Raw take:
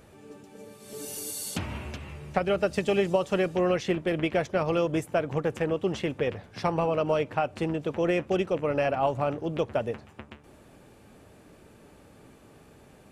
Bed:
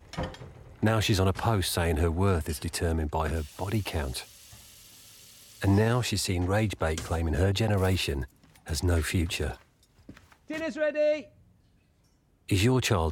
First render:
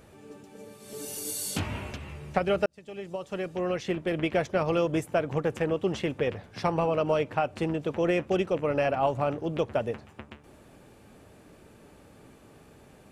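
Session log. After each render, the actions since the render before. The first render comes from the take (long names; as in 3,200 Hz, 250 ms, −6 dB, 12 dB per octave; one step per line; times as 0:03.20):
0:01.23–0:01.93: double-tracking delay 20 ms −3 dB
0:02.66–0:04.38: fade in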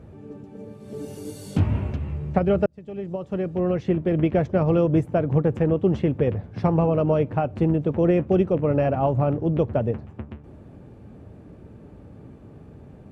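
high-pass filter 78 Hz
spectral tilt −4.5 dB per octave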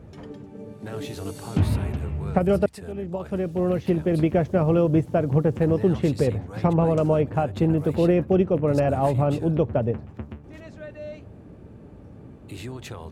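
mix in bed −12.5 dB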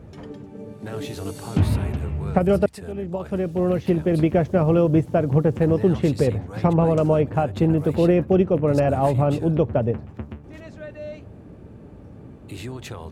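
level +2 dB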